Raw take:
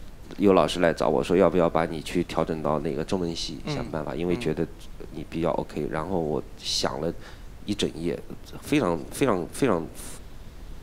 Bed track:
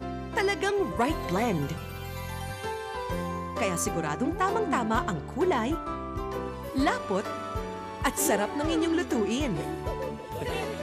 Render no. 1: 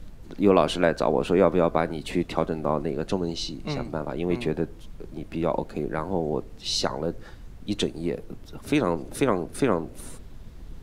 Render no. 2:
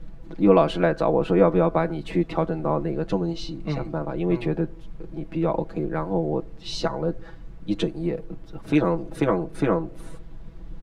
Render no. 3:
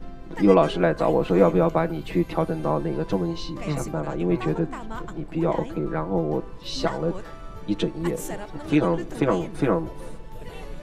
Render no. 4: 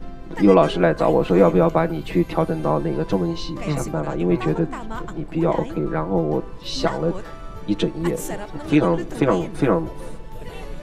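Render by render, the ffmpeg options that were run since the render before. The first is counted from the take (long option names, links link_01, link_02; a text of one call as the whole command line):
ffmpeg -i in.wav -af "afftdn=noise_reduction=6:noise_floor=-43" out.wav
ffmpeg -i in.wav -af "lowpass=frequency=1800:poles=1,aecho=1:1:6.1:0.82" out.wav
ffmpeg -i in.wav -i bed.wav -filter_complex "[1:a]volume=-9.5dB[link_01];[0:a][link_01]amix=inputs=2:normalize=0" out.wav
ffmpeg -i in.wav -af "volume=3.5dB,alimiter=limit=-3dB:level=0:latency=1" out.wav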